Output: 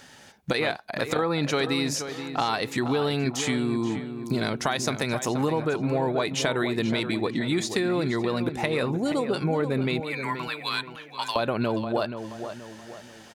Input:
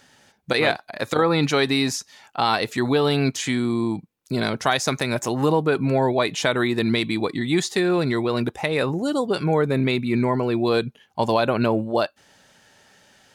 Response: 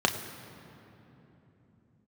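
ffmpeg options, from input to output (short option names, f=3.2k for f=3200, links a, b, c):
-filter_complex "[0:a]asettb=1/sr,asplit=3[a][b][c];[a]atrim=end=10.004[d];[b]atrim=start=10:end=11.36,asetpts=PTS-STARTPTS,afade=t=in:d=0.004:c=qsin,afade=t=out:st=1.356:d=0.004:c=qsin,highpass=f=1.2k:w=0.5412,highpass=f=1.2k:w=1.3066[e];[c]atrim=start=11.356[f];[d][e]acrossfade=d=0.004:c1=hsin:c2=qsin[g];[g][f]acrossfade=d=0.004:c1=qsin:c2=hsin,acompressor=threshold=-31dB:ratio=3,asplit=2[h][i];[i]adelay=478,lowpass=f=2.4k:p=1,volume=-9dB,asplit=2[j][k];[k]adelay=478,lowpass=f=2.4k:p=1,volume=0.43,asplit=2[l][m];[m]adelay=478,lowpass=f=2.4k:p=1,volume=0.43,asplit=2[n][o];[o]adelay=478,lowpass=f=2.4k:p=1,volume=0.43,asplit=2[p][q];[q]adelay=478,lowpass=f=2.4k:p=1,volume=0.43[r];[h][j][l][n][p][r]amix=inputs=6:normalize=0,volume=5dB"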